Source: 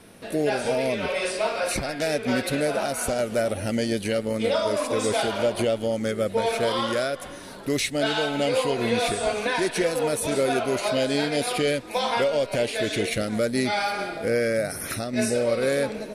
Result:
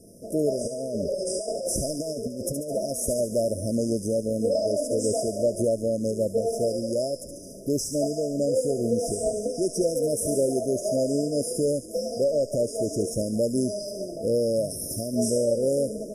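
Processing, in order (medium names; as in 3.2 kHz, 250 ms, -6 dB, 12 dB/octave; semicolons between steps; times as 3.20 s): 0.61–2.75 s: compressor with a negative ratio -27 dBFS, ratio -0.5; brick-wall FIR band-stop 690–4900 Hz; feedback echo behind a high-pass 71 ms, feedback 61%, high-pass 4.3 kHz, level -5.5 dB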